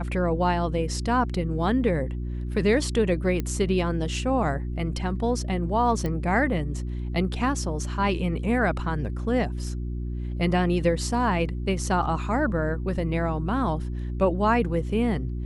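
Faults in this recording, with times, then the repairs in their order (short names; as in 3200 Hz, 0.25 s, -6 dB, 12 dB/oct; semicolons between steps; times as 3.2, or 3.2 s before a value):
hum 60 Hz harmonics 6 -30 dBFS
3.4 pop -15 dBFS
6.06 pop -17 dBFS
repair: de-click; de-hum 60 Hz, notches 6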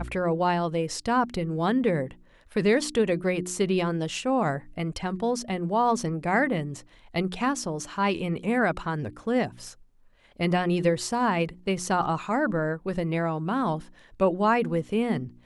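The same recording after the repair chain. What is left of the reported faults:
none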